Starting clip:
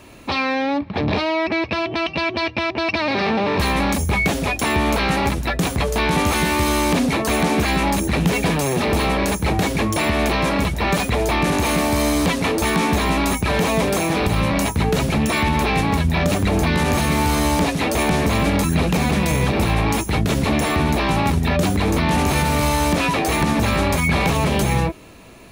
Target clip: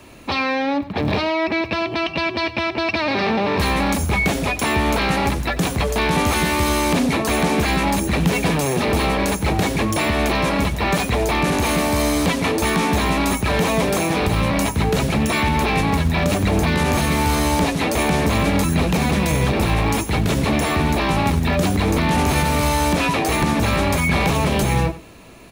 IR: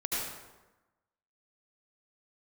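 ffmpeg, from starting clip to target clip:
-filter_complex "[0:a]acrossover=split=120|1100[link_01][link_02][link_03];[link_01]acrusher=bits=4:mode=log:mix=0:aa=0.000001[link_04];[link_04][link_02][link_03]amix=inputs=3:normalize=0,aecho=1:1:93:0.158"

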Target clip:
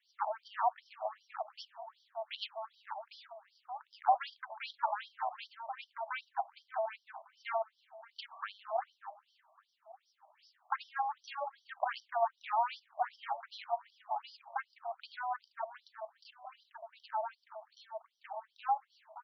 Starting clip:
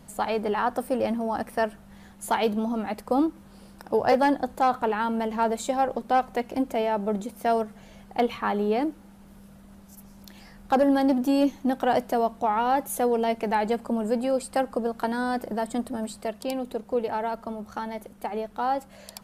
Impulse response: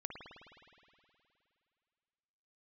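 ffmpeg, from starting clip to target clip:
-filter_complex "[0:a]equalizer=frequency=2100:width=0.84:gain=-10,asplit=2[link_01][link_02];[link_02]adelay=576,lowpass=frequency=850:poles=1,volume=-7dB,asplit=2[link_03][link_04];[link_04]adelay=576,lowpass=frequency=850:poles=1,volume=0.51,asplit=2[link_05][link_06];[link_06]adelay=576,lowpass=frequency=850:poles=1,volume=0.51,asplit=2[link_07][link_08];[link_08]adelay=576,lowpass=frequency=850:poles=1,volume=0.51,asplit=2[link_09][link_10];[link_10]adelay=576,lowpass=frequency=850:poles=1,volume=0.51,asplit=2[link_11][link_12];[link_12]adelay=576,lowpass=frequency=850:poles=1,volume=0.51[link_13];[link_03][link_05][link_07][link_09][link_11][link_13]amix=inputs=6:normalize=0[link_14];[link_01][link_14]amix=inputs=2:normalize=0,aeval=exprs='0.282*(cos(1*acos(clip(val(0)/0.282,-1,1)))-cos(1*PI/2))+0.0158*(cos(7*acos(clip(val(0)/0.282,-1,1)))-cos(7*PI/2))':channel_layout=same,afftfilt=real='re*between(b*sr/1024,820*pow(4300/820,0.5+0.5*sin(2*PI*2.6*pts/sr))/1.41,820*pow(4300/820,0.5+0.5*sin(2*PI*2.6*pts/sr))*1.41)':imag='im*between(b*sr/1024,820*pow(4300/820,0.5+0.5*sin(2*PI*2.6*pts/sr))/1.41,820*pow(4300/820,0.5+0.5*sin(2*PI*2.6*pts/sr))*1.41)':win_size=1024:overlap=0.75,volume=1dB"

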